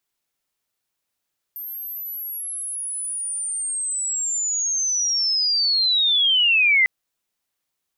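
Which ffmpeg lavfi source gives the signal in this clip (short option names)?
-f lavfi -i "aevalsrc='pow(10,(-30+17*t/5.3)/20)*sin(2*PI*(13000*t-11000*t*t/(2*5.3)))':d=5.3:s=44100"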